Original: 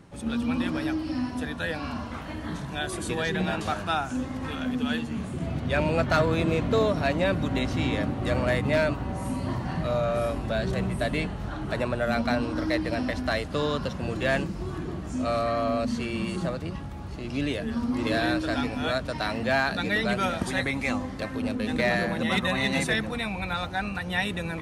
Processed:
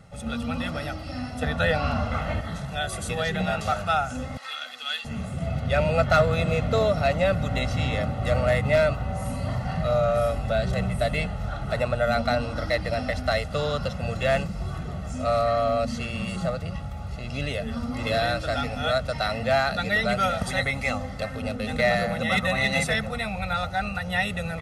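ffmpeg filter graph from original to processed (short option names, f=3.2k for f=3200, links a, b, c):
-filter_complex "[0:a]asettb=1/sr,asplit=3[a][b][c];[a]atrim=end=1.424[d];[b]atrim=start=1.42:end=2.41,asetpts=PTS-STARTPTS,afade=t=in:d=0.004:c=qsin,afade=t=out:st=0.986:d=0.004:c=qsin,aemphasis=mode=reproduction:type=cd,acontrast=72[e];[c]atrim=start=2.406[f];[d][e]acrossfade=d=0.004:c1=hsin:c2=qsin[g];[g][f]acrossfade=d=0.004:c1=qsin:c2=hsin,asettb=1/sr,asplit=3[h][i][j];[h]atrim=end=4.374[k];[i]atrim=start=4.37:end=5.05,asetpts=PTS-STARTPTS,afade=t=in:d=0.004:c=qsin,afade=t=out:st=0.676:d=0.004:c=qsin,highpass=1.2k,equalizer=f=4.2k:t=o:w=0.55:g=8[l];[j]atrim=start=5.046[m];[k][l]acrossfade=d=0.004:c1=hsin:c2=qsin[n];[n][m]acrossfade=d=0.004:c1=qsin:c2=hsin,equalizer=f=280:w=1.5:g=-2.5,aecho=1:1:1.5:0.8"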